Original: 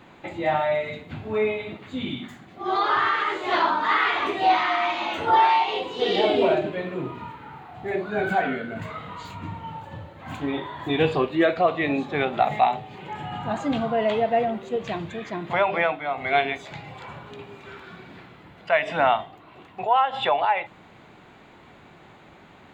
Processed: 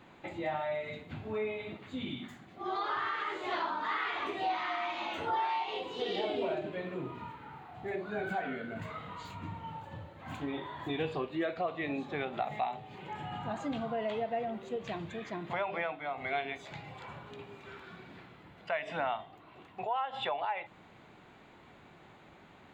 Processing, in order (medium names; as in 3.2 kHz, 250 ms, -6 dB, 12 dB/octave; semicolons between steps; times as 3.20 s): compression 2:1, threshold -28 dBFS, peak gain reduction 8 dB; trim -7 dB